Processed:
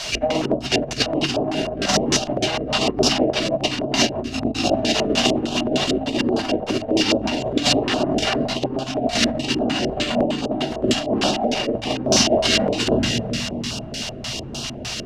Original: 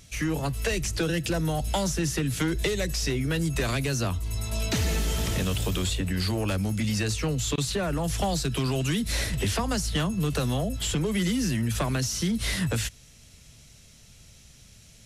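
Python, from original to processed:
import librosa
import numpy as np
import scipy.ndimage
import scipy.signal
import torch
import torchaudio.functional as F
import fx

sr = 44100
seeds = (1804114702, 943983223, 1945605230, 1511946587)

y = fx.echo_feedback(x, sr, ms=257, feedback_pct=56, wet_db=-18.0)
y = 10.0 ** (-29.5 / 20.0) * (np.abs((y / 10.0 ** (-29.5 / 20.0) + 3.0) % 4.0 - 2.0) - 1.0)
y = fx.notch_comb(y, sr, f0_hz=170.0)
y = fx.room_shoebox(y, sr, seeds[0], volume_m3=300.0, walls='mixed', distance_m=6.0)
y = fx.quant_dither(y, sr, seeds[1], bits=6, dither='triangular')
y = fx.high_shelf(y, sr, hz=6100.0, db=-11.0)
y = fx.over_compress(y, sr, threshold_db=-24.0, ratio=-0.5)
y = fx.tilt_eq(y, sr, slope=2.5)
y = fx.resample_bad(y, sr, factor=4, down='filtered', up='hold', at=(9.63, 10.46))
y = fx.filter_lfo_lowpass(y, sr, shape='square', hz=3.3, low_hz=560.0, high_hz=5200.0, q=1.9)
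y = fx.small_body(y, sr, hz=(240.0, 340.0, 630.0, 2800.0), ring_ms=30, db=14)
y = fx.filter_held_notch(y, sr, hz=9.7, low_hz=280.0, high_hz=2000.0)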